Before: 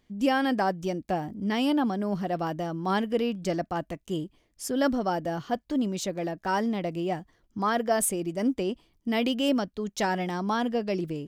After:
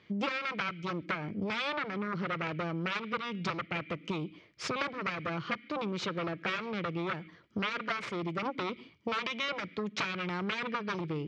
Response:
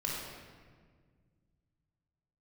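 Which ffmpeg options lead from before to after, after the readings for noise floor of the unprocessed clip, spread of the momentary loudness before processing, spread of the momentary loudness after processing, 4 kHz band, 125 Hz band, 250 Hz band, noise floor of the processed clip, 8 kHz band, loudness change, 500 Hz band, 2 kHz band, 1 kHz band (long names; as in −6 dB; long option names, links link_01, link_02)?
−69 dBFS, 8 LU, 4 LU, −2.0 dB, −4.0 dB, −9.5 dB, −59 dBFS, −16.0 dB, −6.5 dB, −9.0 dB, +0.5 dB, −6.5 dB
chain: -filter_complex "[0:a]aeval=exprs='0.251*(cos(1*acos(clip(val(0)/0.251,-1,1)))-cos(1*PI/2))+0.0562*(cos(6*acos(clip(val(0)/0.251,-1,1)))-cos(6*PI/2))+0.0891*(cos(7*acos(clip(val(0)/0.251,-1,1)))-cos(7*PI/2))':channel_layout=same,highpass=frequency=100:width=0.5412,highpass=frequency=100:width=1.3066,equalizer=frequency=260:width_type=q:width=4:gain=-9,equalizer=frequency=750:width_type=q:width=4:gain=-7,equalizer=frequency=1300:width_type=q:width=4:gain=6,equalizer=frequency=2300:width_type=q:width=4:gain=6,lowpass=frequency=4700:width=0.5412,lowpass=frequency=4700:width=1.3066,asplit=2[link_01][link_02];[link_02]asplit=3[link_03][link_04][link_05];[link_03]bandpass=frequency=270:width_type=q:width=8,volume=0dB[link_06];[link_04]bandpass=frequency=2290:width_type=q:width=8,volume=-6dB[link_07];[link_05]bandpass=frequency=3010:width_type=q:width=8,volume=-9dB[link_08];[link_06][link_07][link_08]amix=inputs=3:normalize=0[link_09];[1:a]atrim=start_sample=2205,afade=type=out:start_time=0.2:duration=0.01,atrim=end_sample=9261[link_10];[link_09][link_10]afir=irnorm=-1:irlink=0,volume=-8dB[link_11];[link_01][link_11]amix=inputs=2:normalize=0,acompressor=threshold=-36dB:ratio=10,volume=5dB"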